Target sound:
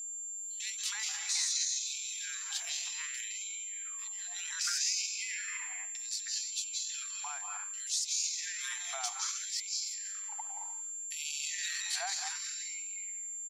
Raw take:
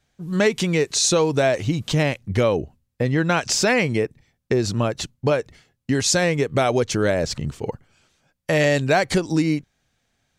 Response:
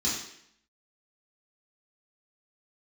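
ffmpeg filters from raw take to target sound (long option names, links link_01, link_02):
-filter_complex "[0:a]highpass=frequency=87:width=0.5412,highpass=frequency=87:width=1.3066,bandreject=frequency=60:width_type=h:width=6,bandreject=frequency=120:width_type=h:width=6,bandreject=frequency=180:width_type=h:width=6,bandreject=frequency=240:width_type=h:width=6,acrossover=split=440|2400[link_01][link_02][link_03];[link_03]adelay=70[link_04];[link_02]adelay=320[link_05];[link_01][link_05][link_04]amix=inputs=3:normalize=0,asplit=2[link_06][link_07];[1:a]atrim=start_sample=2205,adelay=129[link_08];[link_07][link_08]afir=irnorm=-1:irlink=0,volume=-10.5dB[link_09];[link_06][link_09]amix=inputs=2:normalize=0,aeval=exprs='val(0)+0.0224*sin(2*PI*7300*n/s)':channel_layout=same,atempo=0.77,acrossover=split=3100[link_10][link_11];[link_10]acompressor=threshold=-29dB:ratio=6[link_12];[link_11]alimiter=limit=-17dB:level=0:latency=1:release=310[link_13];[link_12][link_13]amix=inputs=2:normalize=0,afftfilt=real='re*gte(b*sr/1024,650*pow(2200/650,0.5+0.5*sin(2*PI*0.64*pts/sr)))':imag='im*gte(b*sr/1024,650*pow(2200/650,0.5+0.5*sin(2*PI*0.64*pts/sr)))':win_size=1024:overlap=0.75,volume=-5.5dB"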